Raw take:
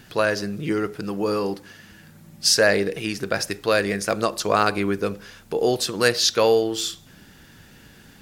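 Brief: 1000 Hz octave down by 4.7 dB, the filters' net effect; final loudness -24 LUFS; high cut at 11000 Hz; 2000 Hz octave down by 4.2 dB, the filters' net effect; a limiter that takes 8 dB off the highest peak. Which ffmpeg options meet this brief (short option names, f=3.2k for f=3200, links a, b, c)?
-af "lowpass=11k,equalizer=f=1k:t=o:g=-5.5,equalizer=f=2k:t=o:g=-3.5,volume=1.5dB,alimiter=limit=-11.5dB:level=0:latency=1"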